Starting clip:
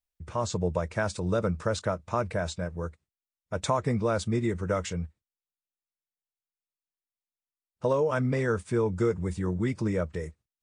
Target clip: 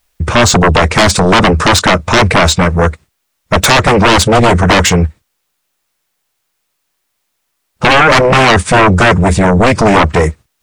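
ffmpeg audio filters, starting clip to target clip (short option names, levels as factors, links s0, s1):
-af "aeval=exprs='0.266*sin(PI/2*7.08*val(0)/0.266)':c=same,equalizer=f=1300:t=o:w=2.6:g=3,volume=2.11"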